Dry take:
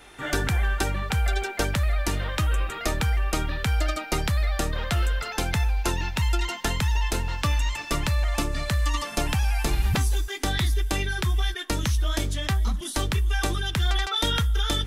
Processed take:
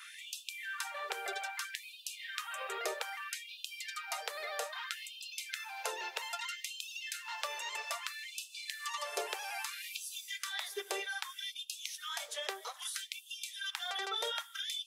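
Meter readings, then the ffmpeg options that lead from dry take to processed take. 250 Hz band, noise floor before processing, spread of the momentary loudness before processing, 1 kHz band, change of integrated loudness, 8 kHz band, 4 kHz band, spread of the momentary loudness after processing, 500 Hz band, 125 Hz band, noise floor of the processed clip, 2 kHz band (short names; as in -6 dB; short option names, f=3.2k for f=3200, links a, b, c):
under -25 dB, -37 dBFS, 3 LU, -10.5 dB, -13.0 dB, -8.5 dB, -8.5 dB, 5 LU, -11.5 dB, under -40 dB, -54 dBFS, -9.5 dB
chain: -filter_complex "[0:a]acrossover=split=400[a][b];[b]acompressor=threshold=-42dB:ratio=2.5[c];[a][c]amix=inputs=2:normalize=0,afftfilt=real='re*gte(b*sr/1024,350*pow(2500/350,0.5+0.5*sin(2*PI*0.62*pts/sr)))':imag='im*gte(b*sr/1024,350*pow(2500/350,0.5+0.5*sin(2*PI*0.62*pts/sr)))':win_size=1024:overlap=0.75,volume=1dB"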